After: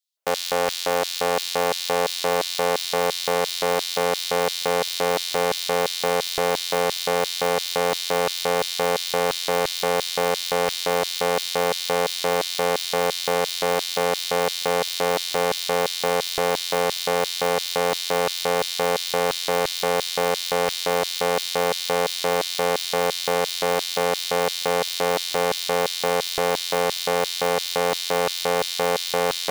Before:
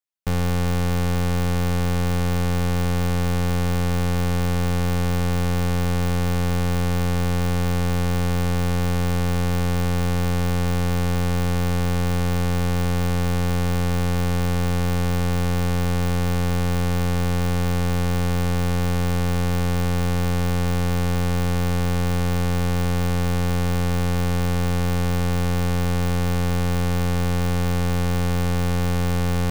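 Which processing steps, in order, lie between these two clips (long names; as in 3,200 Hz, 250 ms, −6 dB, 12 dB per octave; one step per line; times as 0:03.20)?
feedback delay with all-pass diffusion 917 ms, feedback 70%, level −15.5 dB
auto-filter high-pass square 2.9 Hz 560–3,900 Hz
level +5.5 dB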